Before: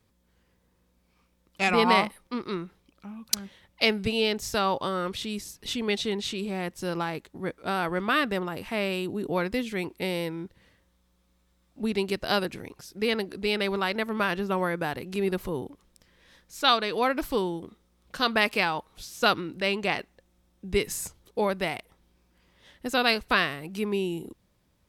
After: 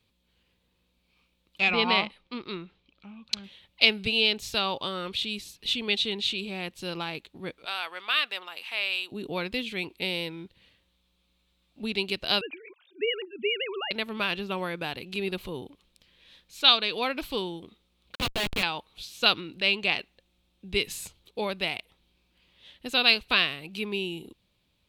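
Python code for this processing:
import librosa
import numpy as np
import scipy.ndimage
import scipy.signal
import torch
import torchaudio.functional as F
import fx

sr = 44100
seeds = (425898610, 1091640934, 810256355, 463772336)

y = fx.air_absorb(x, sr, metres=110.0, at=(1.61, 3.44))
y = fx.highpass(y, sr, hz=880.0, slope=12, at=(7.65, 9.12))
y = fx.sine_speech(y, sr, at=(12.41, 13.91))
y = fx.schmitt(y, sr, flips_db=-24.5, at=(18.15, 18.63))
y = fx.band_shelf(y, sr, hz=3200.0, db=11.5, octaves=1.1)
y = y * librosa.db_to_amplitude(-5.0)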